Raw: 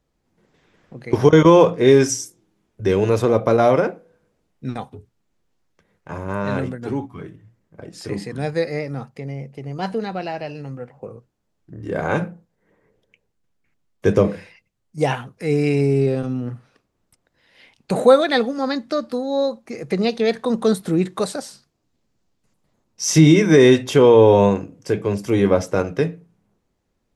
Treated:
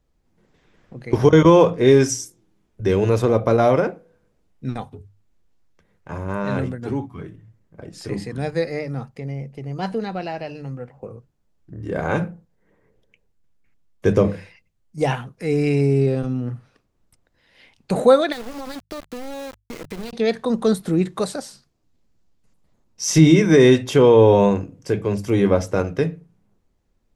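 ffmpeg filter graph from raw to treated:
-filter_complex "[0:a]asettb=1/sr,asplit=3[a][b][c];[a]atrim=end=18.324[d];[b]atrim=start=18.32:end=20.13,asetpts=PTS-STARTPTS,afade=t=in:d=0.004:c=qsin,afade=t=out:st=1.806:d=0.004:c=qsin,agate=range=-33dB:threshold=-43dB:ratio=3:release=100:detection=peak,acompressor=threshold=-27dB:ratio=8:attack=3.2:release=140:knee=1:detection=peak,aeval=exprs='val(0)*gte(abs(val(0)),0.0266)':c=same[e];[c]atrim=start=20.126[f];[d][e]acrossfade=d=0.004:c1=hsin:c2=qsin[g];[g][f]acrossfade=d=0.004:c1=qsin:c2=hsin,lowshelf=f=83:g=11.5,bandreject=f=50:t=h:w=6,bandreject=f=100:t=h:w=6,bandreject=f=150:t=h:w=6,volume=-1.5dB"

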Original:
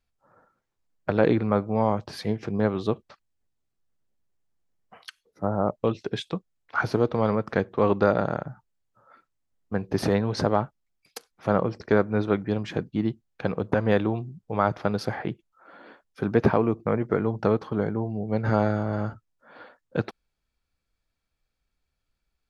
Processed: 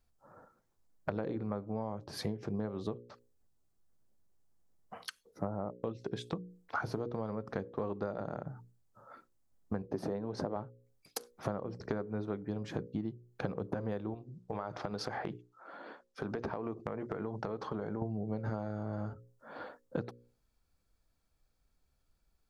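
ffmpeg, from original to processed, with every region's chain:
-filter_complex "[0:a]asettb=1/sr,asplit=3[a][b][c];[a]atrim=end=9.824[d];[b]atrim=start=9.82:end=10.56,asetpts=PTS-STARTPTS,afade=t=in:d=0.004:c=qsin,afade=t=out:st=0.736:d=0.004:c=qsin,bandpass=f=450:t=q:w=0.5,aemphasis=mode=production:type=75kf[e];[c]atrim=start=10.556[f];[d][e]acrossfade=d=0.004:c1=hsin:c2=qsin[g];[g][f]acrossfade=d=0.004:c1=qsin:c2=hsin,asettb=1/sr,asplit=3[h][i][j];[h]atrim=end=14.144[k];[i]atrim=start=14.14:end=18.02,asetpts=PTS-STARTPTS,afade=t=in:d=0.004:c=qsin,afade=t=out:st=3.876:d=0.004:c=qsin,lowpass=6.6k,lowshelf=f=360:g=-9.5,acompressor=threshold=-34dB:ratio=6:attack=3.2:release=140:knee=1:detection=peak[l];[j]atrim=start=18.016[m];[k][l]acrossfade=d=0.004:c1=hsin:c2=qsin[n];[n][m]acrossfade=d=0.004:c1=qsin:c2=hsin,equalizer=f=2.5k:t=o:w=1.7:g=-8.5,bandreject=f=60:t=h:w=6,bandreject=f=120:t=h:w=6,bandreject=f=180:t=h:w=6,bandreject=f=240:t=h:w=6,bandreject=f=300:t=h:w=6,bandreject=f=360:t=h:w=6,bandreject=f=420:t=h:w=6,bandreject=f=480:t=h:w=6,bandreject=f=540:t=h:w=6,acompressor=threshold=-37dB:ratio=16,volume=4.5dB"

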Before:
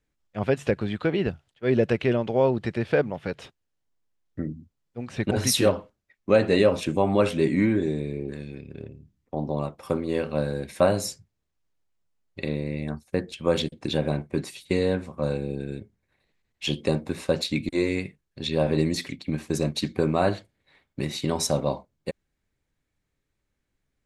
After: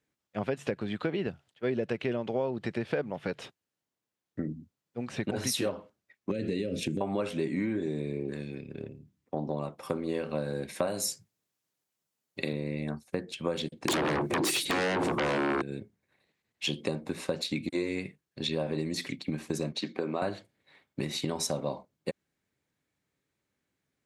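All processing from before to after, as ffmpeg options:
-filter_complex "[0:a]asettb=1/sr,asplit=3[a][b][c];[a]atrim=end=6.314[d];[b]atrim=start=6.31:end=7.01,asetpts=PTS-STARTPTS,afade=t=in:d=0.004:c=qsin,afade=t=out:st=0.696:d=0.004:c=qsin,lowshelf=f=400:g=7,acompressor=threshold=-18dB:ratio=6:attack=3.2:release=140:knee=1:detection=peak,asuperstop=centerf=950:order=4:qfactor=0.63[e];[c]atrim=start=7.006[f];[d][e]acrossfade=d=0.004:c1=hsin:c2=qsin[g];[g][f]acrossfade=d=0.004:c1=qsin:c2=hsin,asettb=1/sr,asplit=3[h][i][j];[h]atrim=end=10.874[k];[i]atrim=start=10.87:end=12.53,asetpts=PTS-STARTPTS,afade=t=in:d=0.004:c=qsin,afade=t=out:st=1.656:d=0.004:c=qsin,highpass=100,aemphasis=mode=production:type=cd[l];[j]atrim=start=12.526[m];[k][l]acrossfade=d=0.004:c1=hsin:c2=qsin[n];[n][m]acrossfade=d=0.004:c1=qsin:c2=hsin,asettb=1/sr,asplit=3[o][p][q];[o]atrim=end=13.884[r];[p]atrim=start=13.88:end=15.62,asetpts=PTS-STARTPTS,afade=t=in:d=0.004:c=qsin,afade=t=out:st=1.736:d=0.004:c=qsin,equalizer=f=340:w=2.6:g=13.5,acompressor=threshold=-29dB:ratio=6:attack=3.2:release=140:knee=1:detection=peak,aeval=exprs='0.15*sin(PI/2*10*val(0)/0.15)':c=same[s];[q]atrim=start=15.616[t];[r][s]acrossfade=d=0.004:c1=hsin:c2=qsin[u];[u][t]acrossfade=d=0.004:c1=qsin:c2=hsin,asettb=1/sr,asplit=3[v][w][x];[v]atrim=end=19.724[y];[w]atrim=start=19.72:end=20.22,asetpts=PTS-STARTPTS,afade=t=in:d=0.004:c=qsin,afade=t=out:st=0.496:d=0.004:c=qsin,highpass=240,lowpass=5.3k,acompressor=threshold=-30dB:ratio=1.5:attack=3.2:release=140:knee=1:detection=peak[z];[x]atrim=start=20.216[aa];[y][z]acrossfade=d=0.004:c1=hsin:c2=qsin[ab];[ab][aa]acrossfade=d=0.004:c1=qsin:c2=hsin,acompressor=threshold=-27dB:ratio=6,highpass=130"

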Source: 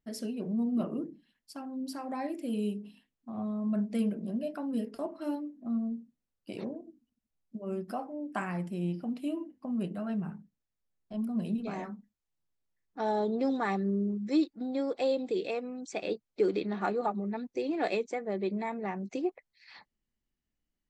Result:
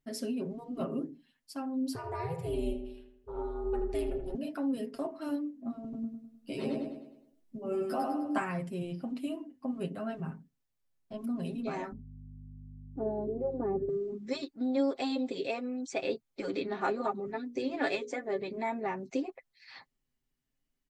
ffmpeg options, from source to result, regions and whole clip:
-filter_complex "[0:a]asettb=1/sr,asplit=3[a][b][c];[a]atrim=end=1.954[d];[b]atrim=start=1.95:end=4.35,asetpts=PTS-STARTPTS,afade=t=in:d=0.004:c=qsin,afade=t=out:st=2.396:d=0.004:c=qsin,aeval=exprs='val(0)*sin(2*PI*170*n/s)':c=same,asplit=2[e][f];[f]adelay=80,lowpass=f=2.4k:p=1,volume=-7dB,asplit=2[g][h];[h]adelay=80,lowpass=f=2.4k:p=1,volume=0.54,asplit=2[i][j];[j]adelay=80,lowpass=f=2.4k:p=1,volume=0.54,asplit=2[k][l];[l]adelay=80,lowpass=f=2.4k:p=1,volume=0.54,asplit=2[m][n];[n]adelay=80,lowpass=f=2.4k:p=1,volume=0.54,asplit=2[o][p];[p]adelay=80,lowpass=f=2.4k:p=1,volume=0.54,asplit=2[q][r];[r]adelay=80,lowpass=f=2.4k:p=1,volume=0.54[s];[e][g][i][k][m][o][q][s]amix=inputs=8:normalize=0,atrim=end_sample=105840[t];[c]atrim=start=4.346[u];[d][t]acrossfade=d=0.004:c1=hsin:c2=qsin[v];[v][u]acrossfade=d=0.004:c1=qsin:c2=hsin,asettb=1/sr,asplit=3[w][x][y];[w]atrim=end=5.834[z];[x]atrim=start=5.83:end=8.38,asetpts=PTS-STARTPTS,afade=t=in:d=0.004:c=qsin,afade=t=out:st=2.546:d=0.004:c=qsin,asplit=2[aa][ab];[ab]adelay=14,volume=-3dB[ac];[aa][ac]amix=inputs=2:normalize=0,atrim=end_sample=112455,aecho=1:1:102|204|306|408|510|612:0.708|0.319|0.143|0.0645|0.029|0.0131,atrim=end_sample=112455[ad];[y]atrim=start=8.376[ae];[z][ad]acrossfade=d=0.004:c1=hsin:c2=qsin[af];[af][ae]acrossfade=d=0.004:c1=qsin:c2=hsin,asettb=1/sr,asplit=3[ag][ah][ai];[ag]atrim=end=11.924[aj];[ah]atrim=start=11.92:end=13.89,asetpts=PTS-STARTPTS,afade=t=in:d=0.004:c=qsin,afade=t=out:st=1.966:d=0.004:c=qsin,lowpass=f=390:t=q:w=1.7,aeval=exprs='val(0)+0.00501*(sin(2*PI*50*n/s)+sin(2*PI*2*50*n/s)/2+sin(2*PI*3*50*n/s)/3+sin(2*PI*4*50*n/s)/4+sin(2*PI*5*50*n/s)/5)':c=same[ak];[ai]atrim=start=13.886[al];[aj][ak]acrossfade=d=0.004:c1=hsin:c2=qsin[am];[am][al]acrossfade=d=0.004:c1=qsin:c2=hsin,asettb=1/sr,asplit=3[an][ao][ap];[an]atrim=end=17.264[aq];[ao]atrim=start=17.26:end=18.42,asetpts=PTS-STARTPTS,afade=t=in:d=0.004:c=qsin,afade=t=out:st=1.156:d=0.004:c=qsin,bandreject=f=60:t=h:w=6,bandreject=f=120:t=h:w=6,bandreject=f=180:t=h:w=6,bandreject=f=240:t=h:w=6,bandreject=f=300:t=h:w=6,bandreject=f=360:t=h:w=6,bandreject=f=420:t=h:w=6,bandreject=f=480:t=h:w=6,bandreject=f=540:t=h:w=6,aecho=1:1:6.9:0.5,atrim=end_sample=51156[ar];[ap]atrim=start=18.416[as];[aq][ar]acrossfade=d=0.004:c1=hsin:c2=qsin[at];[at][as]acrossfade=d=0.004:c1=qsin:c2=hsin,afftfilt=real='re*lt(hypot(re,im),0.316)':imag='im*lt(hypot(re,im),0.316)':win_size=1024:overlap=0.75,aecho=1:1:7.5:0.7"

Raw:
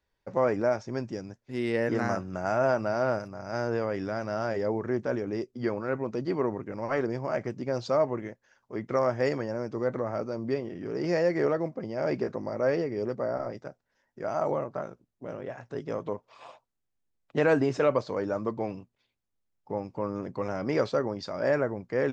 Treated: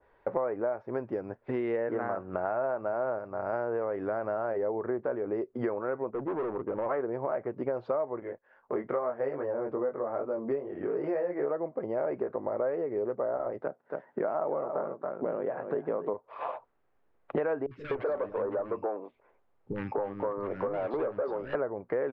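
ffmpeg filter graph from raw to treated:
-filter_complex "[0:a]asettb=1/sr,asplit=3[a][b][c];[a]atrim=end=6.104[d];[b]atrim=start=6.1:end=6.86,asetpts=PTS-STARTPTS,afade=t=in:d=0.004:c=qsin,afade=t=out:st=0.756:d=0.004:c=qsin,adynamicsmooth=sensitivity=2.5:basefreq=1.2k,asoftclip=type=hard:threshold=-32dB[e];[c]atrim=start=6.856[f];[d][e]acrossfade=d=0.004:c1=hsin:c2=qsin[g];[g][f]acrossfade=d=0.004:c1=qsin:c2=hsin,asettb=1/sr,asplit=3[h][i][j];[h]atrim=end=8.204[k];[i]atrim=start=8.2:end=11.51,asetpts=PTS-STARTPTS,afade=t=in:d=0.004:c=qsin,afade=t=out:st=3.306:d=0.004:c=qsin,flanger=delay=20:depth=2.2:speed=2.4,agate=range=-10dB:threshold=-58dB:ratio=16:release=100:detection=peak[l];[j]atrim=start=11.506[m];[k][l]acrossfade=d=0.004:c1=hsin:c2=qsin[n];[n][m]acrossfade=d=0.004:c1=qsin:c2=hsin,asettb=1/sr,asplit=3[o][p][q];[o]atrim=end=13.624[r];[p]atrim=start=13.62:end=16.14,asetpts=PTS-STARTPTS,afade=t=in:d=0.004:c=qsin,afade=t=out:st=2.516:d=0.004:c=qsin,highpass=f=180:t=q:w=1.8,aecho=1:1:279:0.282,atrim=end_sample=111132[s];[q]atrim=start=16.136[t];[r][s]acrossfade=d=0.004:c1=hsin:c2=qsin[u];[u][t]acrossfade=d=0.004:c1=qsin:c2=hsin,asettb=1/sr,asplit=3[v][w][x];[v]atrim=end=17.664[y];[w]atrim=start=17.66:end=21.55,asetpts=PTS-STARTPTS,afade=t=in:d=0.004:c=qsin,afade=t=out:st=3.886:d=0.004:c=qsin,volume=27.5dB,asoftclip=hard,volume=-27.5dB,acrossover=split=260|1800[z][aa][ab];[ab]adelay=50[ac];[aa]adelay=250[ad];[z][ad][ac]amix=inputs=3:normalize=0,atrim=end_sample=171549[ae];[x]atrim=start=21.546[af];[y][ae]acrossfade=d=0.004:c1=hsin:c2=qsin[ag];[ag][af]acrossfade=d=0.004:c1=qsin:c2=hsin,firequalizer=gain_entry='entry(190,0);entry(420,12);entry(1200,11);entry(6100,-27)':delay=0.05:min_phase=1,acompressor=threshold=-39dB:ratio=6,adynamicequalizer=threshold=0.00251:dfrequency=1600:dqfactor=0.7:tfrequency=1600:tqfactor=0.7:attack=5:release=100:ratio=0.375:range=2.5:mode=cutabove:tftype=highshelf,volume=8.5dB"

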